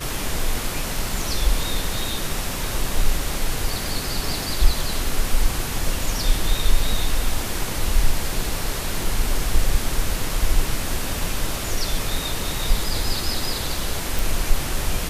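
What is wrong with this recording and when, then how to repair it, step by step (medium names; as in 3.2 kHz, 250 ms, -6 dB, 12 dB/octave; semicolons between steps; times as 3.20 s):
14.19 s: pop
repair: de-click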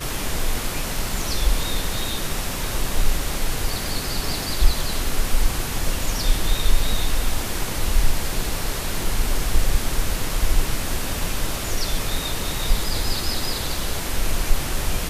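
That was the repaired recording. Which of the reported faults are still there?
nothing left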